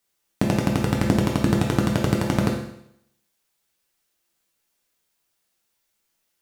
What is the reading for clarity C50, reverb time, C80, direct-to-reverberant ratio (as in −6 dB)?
4.0 dB, 0.75 s, 7.5 dB, −1.5 dB